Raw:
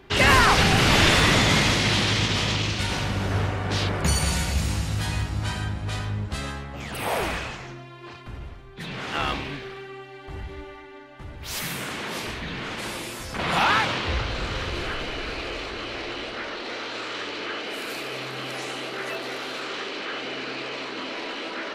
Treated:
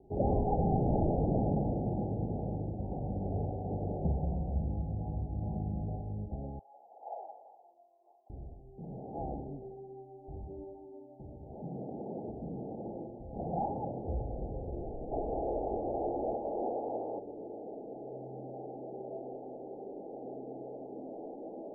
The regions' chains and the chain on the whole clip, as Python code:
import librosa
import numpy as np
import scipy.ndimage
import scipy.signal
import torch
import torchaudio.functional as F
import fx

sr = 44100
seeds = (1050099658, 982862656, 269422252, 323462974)

y = fx.chain(x, sr, fx.peak_eq(hz=180.0, db=6.0, octaves=0.56),
    fx.env_flatten(amount_pct=50), at=(5.41, 5.96))
y = fx.chain(y, sr, fx.highpass(hz=840.0, slope=24),
    fx.tilt_eq(slope=-3.0), at=(6.59, 8.3))
y = fx.chain(y, sr, fx.highpass(hz=240.0, slope=6),
    fx.low_shelf(hz=460.0, db=8.0), at=(10.44, 13.07))
y = fx.chain(y, sr, fx.peak_eq(hz=1400.0, db=14.0, octaves=2.3),
    fx.env_flatten(amount_pct=100), at=(15.11, 17.19))
y = scipy.signal.sosfilt(scipy.signal.cheby1(8, 1.0, 830.0, 'lowpass', fs=sr, output='sos'), y)
y = fx.peak_eq(y, sr, hz=100.0, db=-4.5, octaves=0.3)
y = y * 10.0 ** (-6.5 / 20.0)